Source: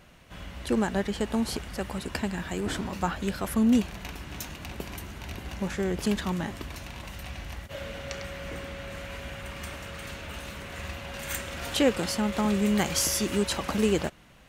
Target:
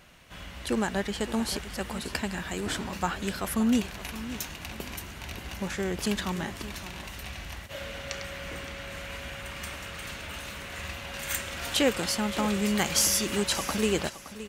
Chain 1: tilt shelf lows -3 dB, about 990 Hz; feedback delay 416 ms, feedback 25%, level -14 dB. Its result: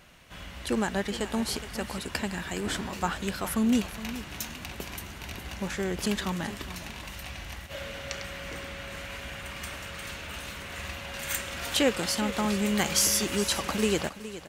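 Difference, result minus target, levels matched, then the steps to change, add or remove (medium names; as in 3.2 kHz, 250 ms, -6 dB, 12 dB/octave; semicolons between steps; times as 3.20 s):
echo 153 ms early
change: feedback delay 569 ms, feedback 25%, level -14 dB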